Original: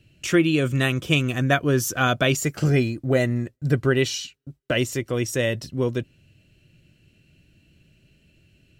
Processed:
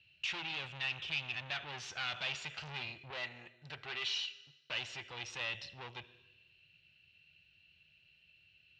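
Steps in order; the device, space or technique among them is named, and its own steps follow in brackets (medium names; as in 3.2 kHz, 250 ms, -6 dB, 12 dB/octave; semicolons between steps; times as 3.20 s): 3.10–4.61 s: high-pass 240 Hz 6 dB/octave; Schroeder reverb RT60 1.1 s, combs from 25 ms, DRR 16.5 dB; scooped metal amplifier (valve stage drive 28 dB, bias 0.45; cabinet simulation 100–4400 Hz, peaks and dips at 120 Hz -5 dB, 340 Hz +7 dB, 850 Hz +6 dB, 2.7 kHz +7 dB, 3.8 kHz +4 dB; amplifier tone stack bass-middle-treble 10-0-10); trim -2 dB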